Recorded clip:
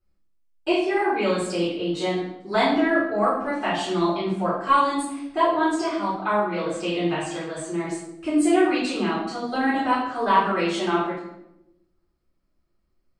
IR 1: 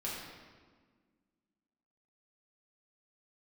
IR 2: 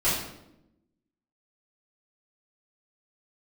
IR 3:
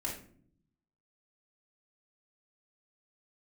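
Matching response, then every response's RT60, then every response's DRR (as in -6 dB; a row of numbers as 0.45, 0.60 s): 2; 1.6 s, 0.85 s, not exponential; -7.5, -11.5, -3.5 dB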